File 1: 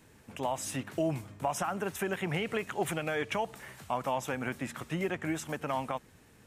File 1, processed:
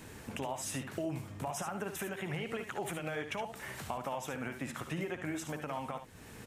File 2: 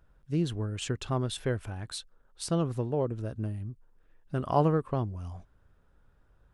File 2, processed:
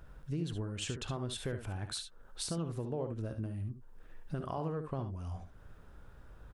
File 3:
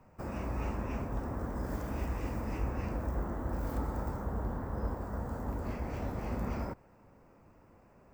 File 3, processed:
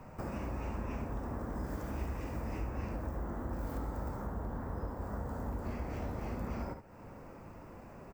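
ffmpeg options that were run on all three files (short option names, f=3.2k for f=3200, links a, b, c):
-af "alimiter=limit=-22.5dB:level=0:latency=1:release=145,acompressor=threshold=-52dB:ratio=2.5,aecho=1:1:59|72:0.237|0.335,volume=9.5dB"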